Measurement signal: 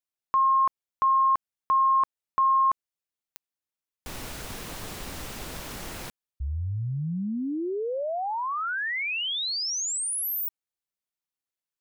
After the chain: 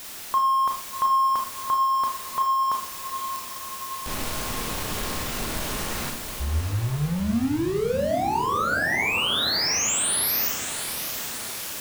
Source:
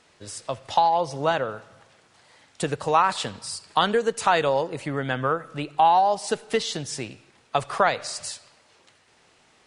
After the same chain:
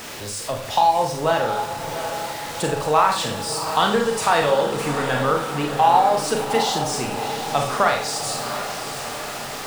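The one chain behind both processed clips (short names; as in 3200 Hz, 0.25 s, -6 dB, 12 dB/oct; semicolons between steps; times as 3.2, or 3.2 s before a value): zero-crossing step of -31 dBFS; diffused feedback echo 0.729 s, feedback 64%, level -9 dB; Schroeder reverb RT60 0.37 s, combs from 27 ms, DRR 2.5 dB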